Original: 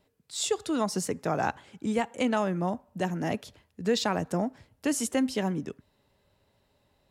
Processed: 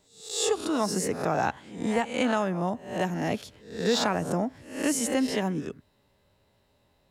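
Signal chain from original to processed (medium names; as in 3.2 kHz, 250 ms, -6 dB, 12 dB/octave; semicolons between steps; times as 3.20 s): reverse spectral sustain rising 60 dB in 0.51 s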